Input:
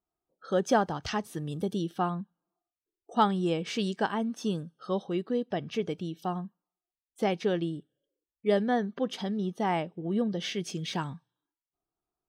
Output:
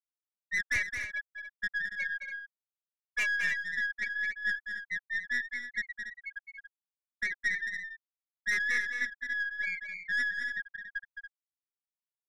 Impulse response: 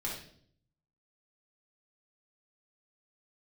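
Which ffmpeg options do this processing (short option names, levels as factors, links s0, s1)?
-filter_complex "[0:a]afftfilt=real='real(if(lt(b,272),68*(eq(floor(b/68),0)*1+eq(floor(b/68),1)*0+eq(floor(b/68),2)*3+eq(floor(b/68),3)*2)+mod(b,68),b),0)':imag='imag(if(lt(b,272),68*(eq(floor(b/68),0)*1+eq(floor(b/68),1)*0+eq(floor(b/68),2)*3+eq(floor(b/68),3)*2)+mod(b,68),b),0)':win_size=2048:overlap=0.75,afftfilt=real='re*gte(hypot(re,im),0.282)':imag='im*gte(hypot(re,im),0.282)':win_size=1024:overlap=0.75,lowpass=1200,equalizer=f=790:t=o:w=0.49:g=12,aeval=exprs='(tanh(44.7*val(0)+0.25)-tanh(0.25))/44.7':c=same,asplit=2[s0][s1];[s1]aecho=0:1:215.7|282.8:0.447|0.316[s2];[s0][s2]amix=inputs=2:normalize=0,volume=2.51"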